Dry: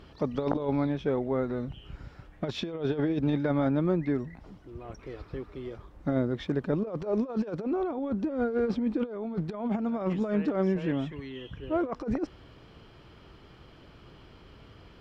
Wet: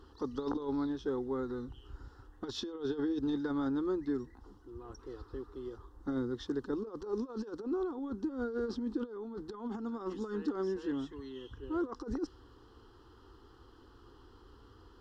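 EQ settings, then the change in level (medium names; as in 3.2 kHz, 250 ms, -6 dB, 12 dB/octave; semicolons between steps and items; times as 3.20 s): dynamic bell 710 Hz, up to -4 dB, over -39 dBFS, Q 0.82; dynamic bell 5.1 kHz, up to +7 dB, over -59 dBFS, Q 1; static phaser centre 620 Hz, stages 6; -2.5 dB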